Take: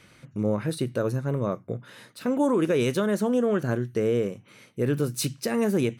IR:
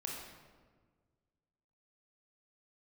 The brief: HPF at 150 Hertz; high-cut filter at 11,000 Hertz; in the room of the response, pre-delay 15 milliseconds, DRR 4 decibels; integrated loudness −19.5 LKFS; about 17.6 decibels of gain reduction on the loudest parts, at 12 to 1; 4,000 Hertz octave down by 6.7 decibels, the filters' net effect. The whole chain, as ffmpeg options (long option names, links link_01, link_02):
-filter_complex "[0:a]highpass=150,lowpass=11000,equalizer=frequency=4000:width_type=o:gain=-9,acompressor=threshold=-38dB:ratio=12,asplit=2[link_01][link_02];[1:a]atrim=start_sample=2205,adelay=15[link_03];[link_02][link_03]afir=irnorm=-1:irlink=0,volume=-4dB[link_04];[link_01][link_04]amix=inputs=2:normalize=0,volume=22dB"